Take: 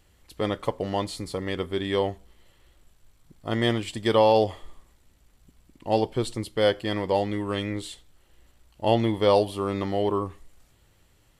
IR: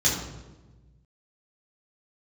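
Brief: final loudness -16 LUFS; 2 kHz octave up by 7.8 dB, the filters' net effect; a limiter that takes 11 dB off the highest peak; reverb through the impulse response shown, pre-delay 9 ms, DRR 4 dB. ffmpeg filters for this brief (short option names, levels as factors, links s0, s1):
-filter_complex "[0:a]equalizer=f=2000:t=o:g=9,alimiter=limit=0.141:level=0:latency=1,asplit=2[s0][s1];[1:a]atrim=start_sample=2205,adelay=9[s2];[s1][s2]afir=irnorm=-1:irlink=0,volume=0.141[s3];[s0][s3]amix=inputs=2:normalize=0,volume=3.35"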